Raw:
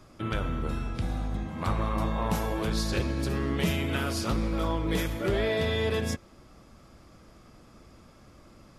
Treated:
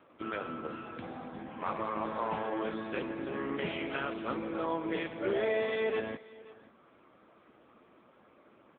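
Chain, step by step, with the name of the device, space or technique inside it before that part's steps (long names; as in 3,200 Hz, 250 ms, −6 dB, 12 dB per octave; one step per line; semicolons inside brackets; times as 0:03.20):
satellite phone (band-pass filter 310–3,100 Hz; single-tap delay 526 ms −20.5 dB; AMR narrowband 6.7 kbit/s 8,000 Hz)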